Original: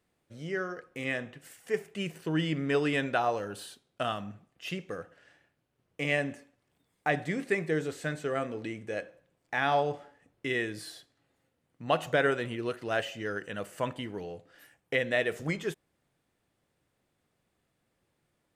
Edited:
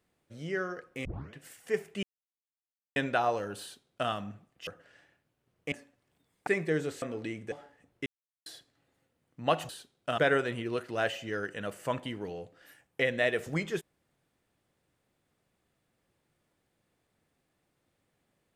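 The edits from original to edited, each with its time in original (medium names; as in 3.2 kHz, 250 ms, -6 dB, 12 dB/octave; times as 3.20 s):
1.05 s: tape start 0.29 s
2.03–2.96 s: mute
3.61–4.10 s: copy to 12.11 s
4.67–4.99 s: delete
6.04–6.32 s: delete
7.07–7.48 s: delete
8.03–8.42 s: delete
8.92–9.94 s: delete
10.48–10.88 s: mute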